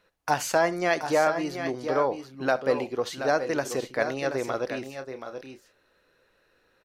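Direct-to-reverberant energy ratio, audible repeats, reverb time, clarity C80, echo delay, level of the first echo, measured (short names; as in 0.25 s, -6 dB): none, 3, none, none, 67 ms, -19.5 dB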